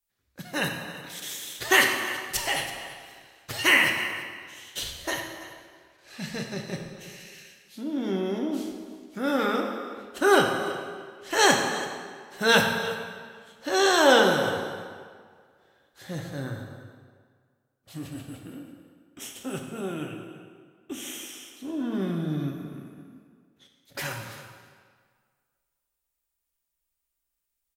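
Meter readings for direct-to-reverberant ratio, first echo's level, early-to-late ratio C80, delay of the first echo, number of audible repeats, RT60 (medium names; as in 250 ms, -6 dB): 2.0 dB, -17.0 dB, 5.0 dB, 330 ms, 1, 1.8 s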